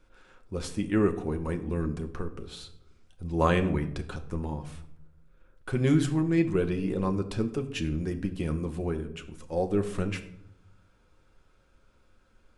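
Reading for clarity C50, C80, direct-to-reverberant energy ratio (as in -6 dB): 13.0 dB, 16.0 dB, 5.0 dB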